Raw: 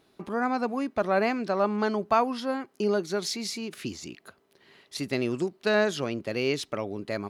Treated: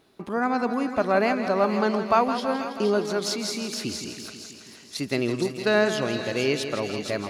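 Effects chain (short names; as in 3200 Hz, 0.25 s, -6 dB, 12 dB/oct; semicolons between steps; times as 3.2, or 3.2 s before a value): thin delay 0.467 s, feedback 33%, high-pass 3300 Hz, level -4 dB; warbling echo 0.163 s, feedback 69%, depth 59 cents, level -10 dB; gain +2.5 dB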